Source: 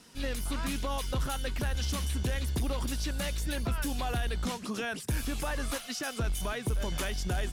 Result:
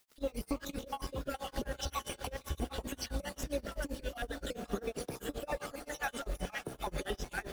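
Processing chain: random holes in the spectrogram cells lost 54%; de-hum 64.55 Hz, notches 20; peak limiter -29 dBFS, peak gain reduction 6.5 dB; peaking EQ 510 Hz +13.5 dB 2.1 oct; band-stop 960 Hz, Q 13; echo that smears into a reverb 517 ms, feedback 45%, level -10 dB; crossover distortion -48.5 dBFS; compression, threshold -33 dBFS, peak gain reduction 9 dB; word length cut 10-bit, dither none; added noise white -73 dBFS; tremolo 7.6 Hz, depth 97%; trim +4 dB

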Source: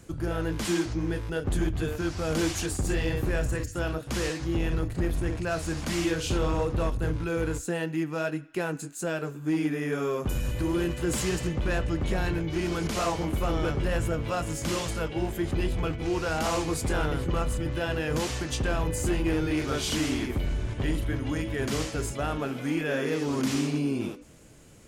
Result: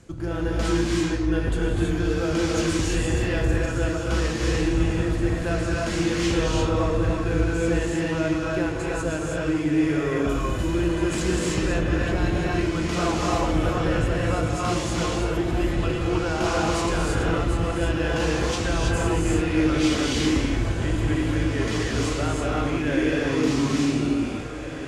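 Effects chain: low-pass 7.6 kHz 12 dB/octave; on a send: echo that smears into a reverb 1847 ms, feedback 48%, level -10 dB; on the sum: gated-style reverb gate 360 ms rising, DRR -3 dB

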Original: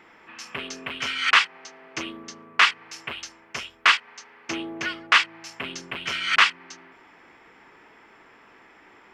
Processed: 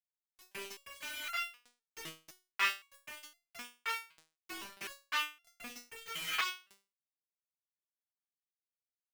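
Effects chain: dynamic bell 1.6 kHz, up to -3 dB, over -30 dBFS, Q 0.89; bit crusher 5-bit; resonator arpeggio 3.9 Hz 160–690 Hz

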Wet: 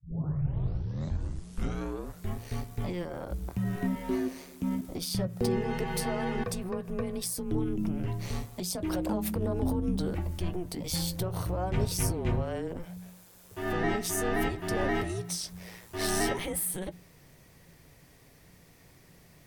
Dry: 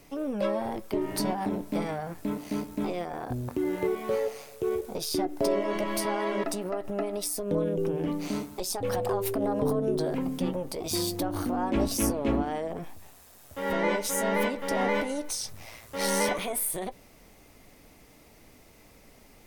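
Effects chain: tape start-up on the opening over 2.42 s; frequency shift -180 Hz; trim -2 dB

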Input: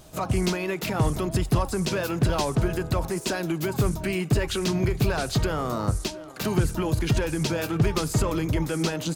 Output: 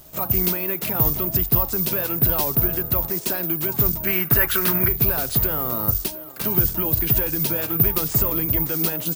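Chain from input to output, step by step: 4.07–4.88 s: peaking EQ 1.5 kHz +14 dB 1.2 oct; careless resampling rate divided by 3×, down none, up zero stuff; trim -1.5 dB

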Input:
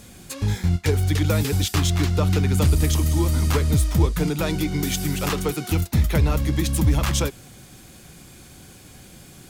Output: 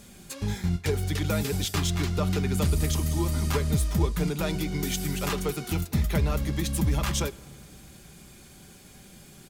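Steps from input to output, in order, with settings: comb 5 ms, depth 35%; on a send: reverberation RT60 2.6 s, pre-delay 6 ms, DRR 20.5 dB; on the sum: trim -5 dB

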